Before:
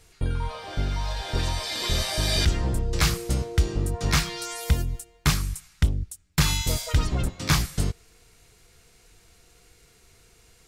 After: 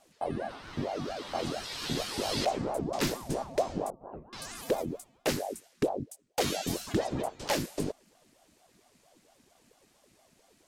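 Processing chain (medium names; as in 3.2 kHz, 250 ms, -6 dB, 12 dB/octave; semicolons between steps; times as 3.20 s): 3.90–4.33 s: cascade formant filter u; ring modulator with a swept carrier 460 Hz, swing 60%, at 4.4 Hz; trim -5.5 dB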